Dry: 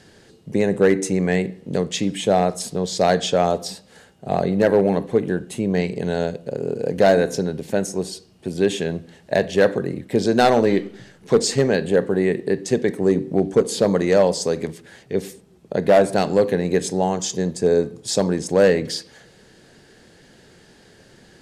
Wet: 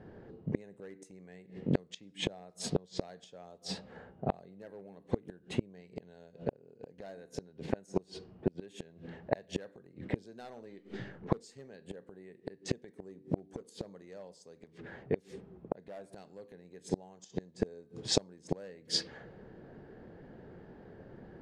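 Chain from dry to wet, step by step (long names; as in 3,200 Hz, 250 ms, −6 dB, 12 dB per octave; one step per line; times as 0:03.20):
low-pass that shuts in the quiet parts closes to 920 Hz, open at −16.5 dBFS
gate with flip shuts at −15 dBFS, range −33 dB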